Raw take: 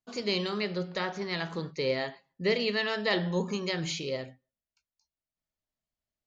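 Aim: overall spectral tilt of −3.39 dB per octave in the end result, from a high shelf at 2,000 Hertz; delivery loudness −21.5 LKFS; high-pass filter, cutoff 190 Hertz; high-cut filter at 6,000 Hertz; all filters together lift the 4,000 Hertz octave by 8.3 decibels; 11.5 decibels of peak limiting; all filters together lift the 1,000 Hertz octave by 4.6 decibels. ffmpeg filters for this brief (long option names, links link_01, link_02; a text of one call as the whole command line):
ffmpeg -i in.wav -af "highpass=190,lowpass=6000,equalizer=frequency=1000:width_type=o:gain=4,highshelf=frequency=2000:gain=6.5,equalizer=frequency=4000:width_type=o:gain=4.5,volume=9.5dB,alimiter=limit=-10.5dB:level=0:latency=1" out.wav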